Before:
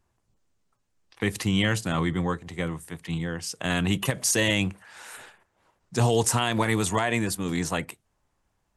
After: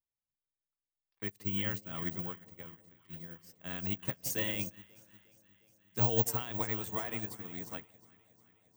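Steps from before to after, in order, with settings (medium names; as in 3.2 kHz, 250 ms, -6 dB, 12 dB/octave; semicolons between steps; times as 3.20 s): echo whose repeats swap between lows and highs 179 ms, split 800 Hz, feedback 85%, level -9 dB; careless resampling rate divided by 2×, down filtered, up zero stuff; upward expansion 2.5:1, over -31 dBFS; trim -8 dB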